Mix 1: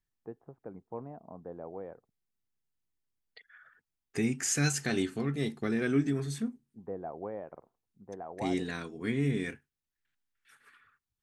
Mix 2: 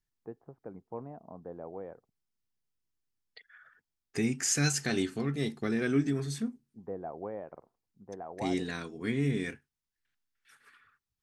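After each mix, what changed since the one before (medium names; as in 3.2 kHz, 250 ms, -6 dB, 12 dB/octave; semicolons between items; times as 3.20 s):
second voice: add peaking EQ 5.1 kHz +4 dB 0.66 oct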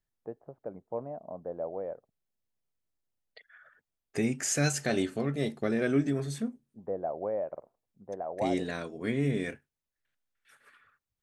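second voice: add peaking EQ 5.1 kHz -4 dB 0.66 oct; master: add peaking EQ 590 Hz +12.5 dB 0.47 oct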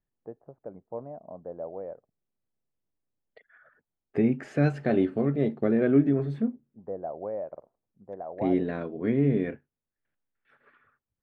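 second voice: add peaking EQ 310 Hz +7 dB 3 oct; master: add distance through air 460 m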